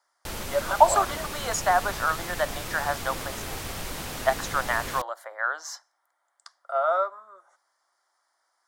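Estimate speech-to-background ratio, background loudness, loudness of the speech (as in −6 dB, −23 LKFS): 8.0 dB, −34.5 LKFS, −26.5 LKFS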